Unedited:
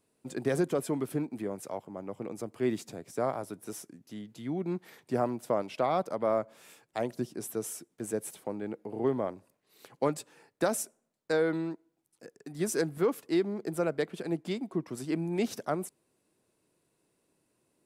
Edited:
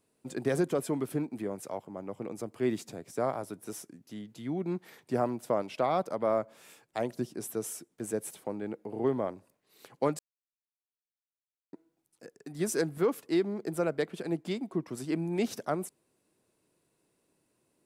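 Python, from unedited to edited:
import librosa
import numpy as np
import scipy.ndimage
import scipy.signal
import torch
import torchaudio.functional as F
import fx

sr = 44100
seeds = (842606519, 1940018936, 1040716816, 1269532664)

y = fx.edit(x, sr, fx.silence(start_s=10.19, length_s=1.54), tone=tone)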